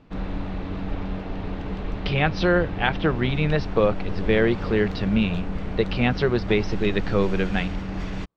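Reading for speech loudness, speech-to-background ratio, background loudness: -24.0 LUFS, 8.0 dB, -32.0 LUFS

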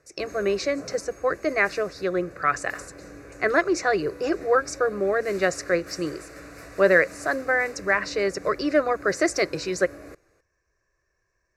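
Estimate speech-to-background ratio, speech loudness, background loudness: 18.5 dB, -24.5 LUFS, -43.0 LUFS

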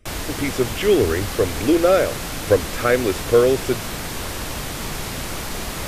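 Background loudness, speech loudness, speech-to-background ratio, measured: -28.0 LUFS, -19.5 LUFS, 8.5 dB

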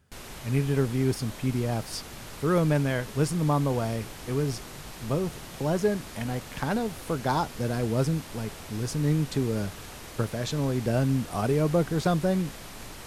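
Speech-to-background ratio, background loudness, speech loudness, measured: 13.5 dB, -41.5 LUFS, -28.0 LUFS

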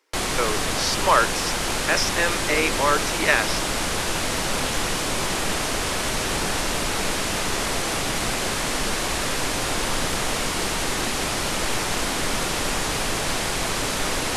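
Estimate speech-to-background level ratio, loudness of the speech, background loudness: 0.5 dB, -23.5 LUFS, -24.0 LUFS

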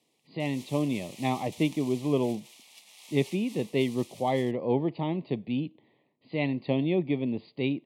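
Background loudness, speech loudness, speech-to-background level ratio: -48.5 LUFS, -30.0 LUFS, 18.5 dB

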